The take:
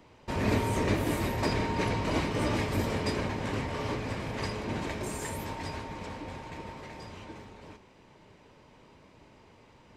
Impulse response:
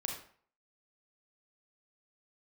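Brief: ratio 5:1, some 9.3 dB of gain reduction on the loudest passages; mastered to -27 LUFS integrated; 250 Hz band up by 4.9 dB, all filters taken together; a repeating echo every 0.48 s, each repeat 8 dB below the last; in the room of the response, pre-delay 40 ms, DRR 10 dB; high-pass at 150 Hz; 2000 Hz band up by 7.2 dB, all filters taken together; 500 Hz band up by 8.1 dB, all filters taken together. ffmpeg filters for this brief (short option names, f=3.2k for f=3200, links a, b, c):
-filter_complex "[0:a]highpass=150,equalizer=f=250:t=o:g=4,equalizer=f=500:t=o:g=8.5,equalizer=f=2k:t=o:g=8,acompressor=threshold=-29dB:ratio=5,aecho=1:1:480|960|1440|1920|2400:0.398|0.159|0.0637|0.0255|0.0102,asplit=2[a][b];[1:a]atrim=start_sample=2205,adelay=40[c];[b][c]afir=irnorm=-1:irlink=0,volume=-11dB[d];[a][d]amix=inputs=2:normalize=0,volume=5dB"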